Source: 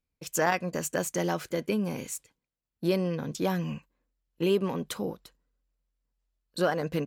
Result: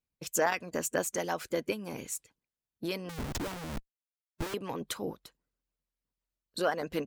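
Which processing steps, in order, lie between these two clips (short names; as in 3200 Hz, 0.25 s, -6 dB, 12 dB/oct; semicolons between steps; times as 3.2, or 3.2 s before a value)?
3.09–4.54 Schmitt trigger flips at -36 dBFS; harmonic-percussive split harmonic -13 dB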